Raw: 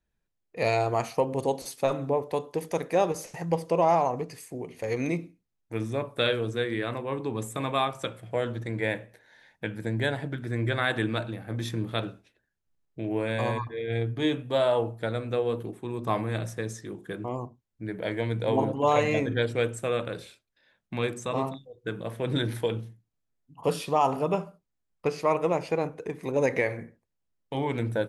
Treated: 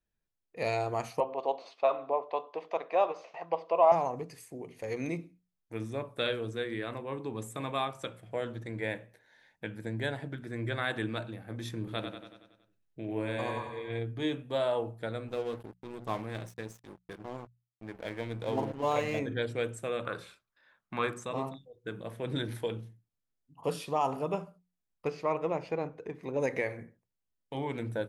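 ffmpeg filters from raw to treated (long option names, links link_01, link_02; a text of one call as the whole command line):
ffmpeg -i in.wav -filter_complex "[0:a]asettb=1/sr,asplit=3[link_01][link_02][link_03];[link_01]atrim=end=1.204[link_04];[link_02]atrim=start=1.2:end=3.92,asetpts=PTS-STARTPTS,afade=type=in:duration=0.004:curve=qsin,afade=type=out:start_time=2.716:duration=0.004:curve=qsin,highpass=460,equalizer=frequency=670:width_type=q:width=4:gain=10,equalizer=frequency=1100:width_type=q:width=4:gain=10,equalizer=frequency=1700:width_type=q:width=4:gain=-4,equalizer=frequency=2600:width_type=q:width=4:gain=4,lowpass=frequency=4000:width=0.5412,lowpass=frequency=4000:width=1.3066[link_05];[link_03]atrim=start=3.916[link_06];[link_04][link_05]acrossfade=duration=0.004:curve1=hsin:curve2=qsin[link_07];[link_07][link_06]acrossfade=duration=0.004:curve1=qsin:curve2=hsin,asettb=1/sr,asplit=3[link_08][link_09][link_10];[link_08]atrim=end=11.784[link_11];[link_09]atrim=start=11.78:end=13.99,asetpts=PTS-STARTPTS,afade=type=in:duration=0.004:curve=qsin,afade=type=out:start_time=2.206:duration=0.004:curve=qsin,aecho=1:1:93|186|279|372|465|558|651:0.447|0.255|0.145|0.0827|0.0472|0.0269|0.0153,atrim=end_sample=97461[link_12];[link_10]atrim=start=13.986[link_13];[link_11][link_12]acrossfade=duration=0.004:curve1=hsin:curve2=qsin[link_14];[link_14][link_13]acrossfade=duration=0.004:curve1=qsin:curve2=hsin,asettb=1/sr,asplit=3[link_15][link_16][link_17];[link_15]atrim=end=15.284[link_18];[link_16]atrim=start=15.28:end=19.19,asetpts=PTS-STARTPTS,afade=type=in:duration=0.004:curve=qsin,afade=type=out:start_time=3.906:duration=0.004:curve=qsin,aeval=exprs='sgn(val(0))*max(abs(val(0))-0.0106,0)':channel_layout=same[link_19];[link_17]atrim=start=19.186[link_20];[link_18][link_19]acrossfade=duration=0.004:curve1=hsin:curve2=qsin[link_21];[link_21][link_20]acrossfade=duration=0.004:curve1=qsin:curve2=hsin,asettb=1/sr,asplit=3[link_22][link_23][link_24];[link_22]atrim=end=20.054[link_25];[link_23]atrim=start=20.05:end=21.24,asetpts=PTS-STARTPTS,afade=type=in:duration=0.004:curve=qsin,afade=type=out:start_time=1.186:duration=0.004:curve=qsin,equalizer=frequency=1200:width=1.4:gain=14.5[link_26];[link_24]atrim=start=21.236[link_27];[link_25][link_26]acrossfade=duration=0.004:curve1=hsin:curve2=qsin[link_28];[link_28][link_27]acrossfade=duration=0.004:curve1=qsin:curve2=hsin,asettb=1/sr,asplit=3[link_29][link_30][link_31];[link_29]atrim=end=25.104[link_32];[link_30]atrim=start=25.1:end=26.4,asetpts=PTS-STARTPTS,afade=type=in:duration=0.004:curve=qsin,afade=type=out:start_time=1.296:duration=0.004:curve=qsin,equalizer=frequency=10000:width_type=o:width=1:gain=-15[link_33];[link_31]atrim=start=26.396[link_34];[link_32][link_33]acrossfade=duration=0.004:curve1=hsin:curve2=qsin[link_35];[link_35][link_34]acrossfade=duration=0.004:curve1=qsin:curve2=hsin,bandreject=frequency=60:width_type=h:width=6,bandreject=frequency=120:width_type=h:width=6,bandreject=frequency=180:width_type=h:width=6,volume=-6dB" out.wav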